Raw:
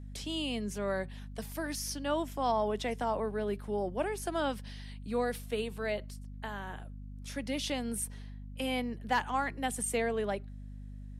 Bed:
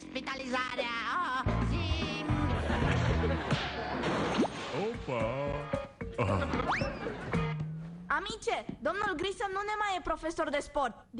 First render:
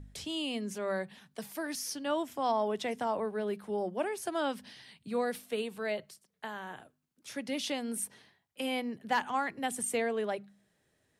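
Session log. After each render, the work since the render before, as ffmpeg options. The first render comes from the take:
-af "bandreject=f=50:t=h:w=4,bandreject=f=100:t=h:w=4,bandreject=f=150:t=h:w=4,bandreject=f=200:t=h:w=4,bandreject=f=250:t=h:w=4"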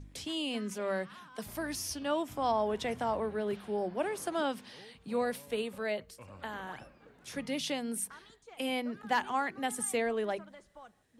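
-filter_complex "[1:a]volume=0.0891[s0];[0:a][s0]amix=inputs=2:normalize=0"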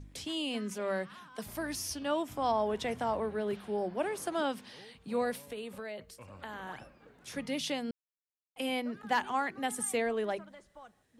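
-filter_complex "[0:a]asettb=1/sr,asplit=3[s0][s1][s2];[s0]atrim=end=5.484[s3];[s1]atrim=start=5.48:end=6.66,asetpts=PTS-STARTPTS,afade=t=in:d=0.004:c=qsin,afade=t=out:st=1.176:d=0.004:c=qsin,acompressor=threshold=0.0141:ratio=6:attack=3.2:release=140:knee=1:detection=peak[s4];[s2]atrim=start=6.656[s5];[s3][s4]acrossfade=d=0.004:c1=hsin:c2=qsin[s6];[s6][s5]acrossfade=d=0.004:c1=qsin:c2=hsin,asplit=3[s7][s8][s9];[s7]atrim=end=7.91,asetpts=PTS-STARTPTS,afade=t=out:st=7.906:d=0.004:c=hsin[s10];[s8]atrim=start=7.91:end=8.56,asetpts=PTS-STARTPTS,volume=0[s11];[s9]atrim=start=8.56,asetpts=PTS-STARTPTS,afade=t=in:d=0.004:c=hsin[s12];[s10][s11][s12]concat=n=3:v=0:a=1"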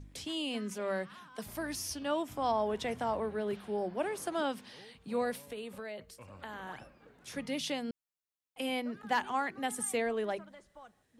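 -af "volume=0.891"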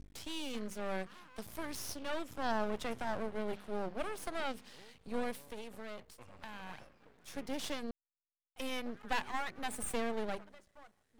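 -af "aeval=exprs='max(val(0),0)':c=same"

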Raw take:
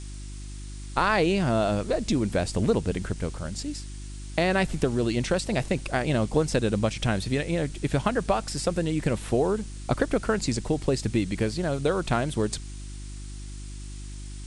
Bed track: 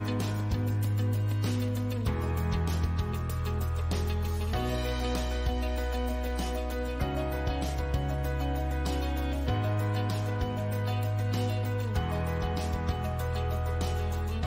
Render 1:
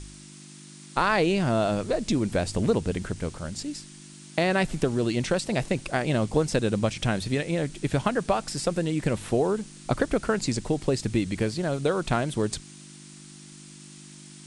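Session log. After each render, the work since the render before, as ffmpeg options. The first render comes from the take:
-af "bandreject=f=50:t=h:w=4,bandreject=f=100:t=h:w=4"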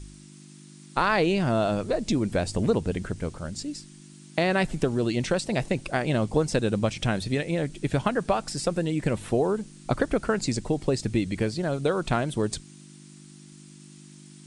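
-af "afftdn=nr=6:nf=-46"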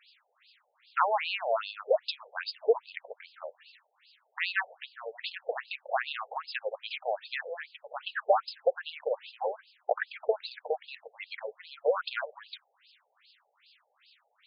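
-filter_complex "[0:a]asplit=2[s0][s1];[s1]acrusher=bits=5:mode=log:mix=0:aa=0.000001,volume=0.299[s2];[s0][s2]amix=inputs=2:normalize=0,afftfilt=real='re*between(b*sr/1024,590*pow(3700/590,0.5+0.5*sin(2*PI*2.5*pts/sr))/1.41,590*pow(3700/590,0.5+0.5*sin(2*PI*2.5*pts/sr))*1.41)':imag='im*between(b*sr/1024,590*pow(3700/590,0.5+0.5*sin(2*PI*2.5*pts/sr))/1.41,590*pow(3700/590,0.5+0.5*sin(2*PI*2.5*pts/sr))*1.41)':win_size=1024:overlap=0.75"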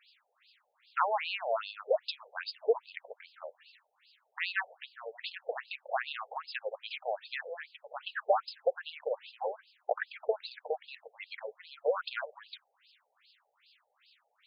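-af "volume=0.708"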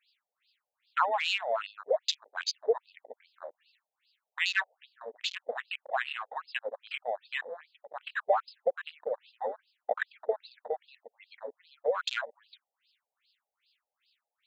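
-af "afwtdn=0.00794,highshelf=f=2300:g=11.5"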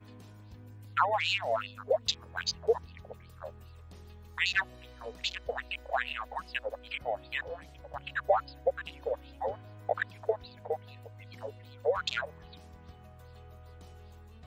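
-filter_complex "[1:a]volume=0.0891[s0];[0:a][s0]amix=inputs=2:normalize=0"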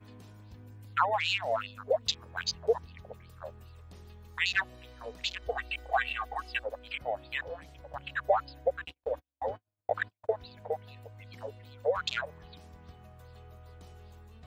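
-filter_complex "[0:a]asettb=1/sr,asplit=3[s0][s1][s2];[s0]atrim=end=5.424[s3];[s1]atrim=start=5.42:end=6.64,asetpts=PTS-STARTPTS,afade=t=in:d=0.004:c=qsin,afade=t=out:st=1.216:d=0.004:c=qsin,aecho=1:1:2.6:0.78,atrim=end_sample=53802[s4];[s2]atrim=start=6.636[s5];[s3][s4]acrossfade=d=0.004:c1=hsin:c2=qsin[s6];[s6][s5]acrossfade=d=0.004:c1=qsin:c2=hsin,asplit=3[s7][s8][s9];[s7]afade=t=out:st=8.76:d=0.02[s10];[s8]agate=range=0.00501:threshold=0.00562:ratio=16:release=100:detection=peak,afade=t=in:st=8.76:d=0.02,afade=t=out:st=10.34:d=0.02[s11];[s9]afade=t=in:st=10.34:d=0.02[s12];[s10][s11][s12]amix=inputs=3:normalize=0"

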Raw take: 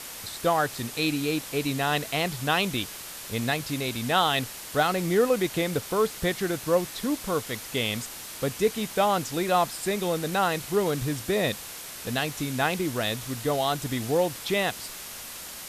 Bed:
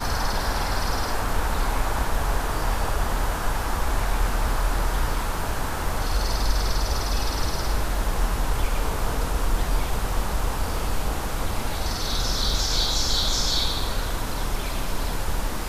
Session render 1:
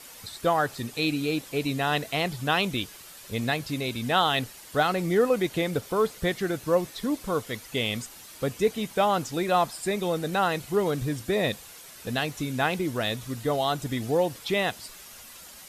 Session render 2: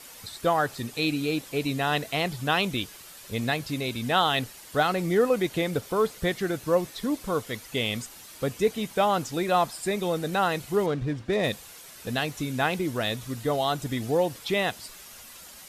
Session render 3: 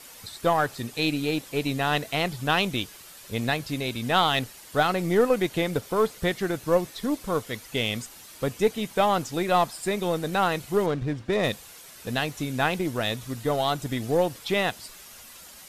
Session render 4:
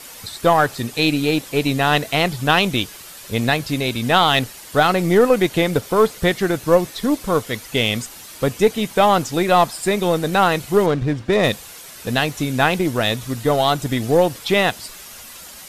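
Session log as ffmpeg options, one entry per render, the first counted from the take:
-af "afftdn=nr=9:nf=-40"
-filter_complex "[0:a]asettb=1/sr,asplit=3[s0][s1][s2];[s0]atrim=end=10.864[s3];[s1]atrim=start=10.86:end=11.47,asetpts=PTS-STARTPTS,afade=t=in:d=0.004:c=qsin,afade=t=out:st=0.606:d=0.004:c=qsin,adynamicsmooth=sensitivity=6:basefreq=2600[s4];[s2]atrim=start=11.466[s5];[s3][s4]acrossfade=d=0.004:c1=hsin:c2=qsin[s6];[s6][s5]acrossfade=d=0.004:c1=qsin:c2=hsin"
-filter_complex "[0:a]aeval=exprs='0.376*(cos(1*acos(clip(val(0)/0.376,-1,1)))-cos(1*PI/2))+0.0211*(cos(4*acos(clip(val(0)/0.376,-1,1)))-cos(4*PI/2))+0.0119*(cos(7*acos(clip(val(0)/0.376,-1,1)))-cos(7*PI/2))':c=same,asplit=2[s0][s1];[s1]asoftclip=type=hard:threshold=0.1,volume=0.251[s2];[s0][s2]amix=inputs=2:normalize=0"
-af "volume=2.51,alimiter=limit=0.708:level=0:latency=1"

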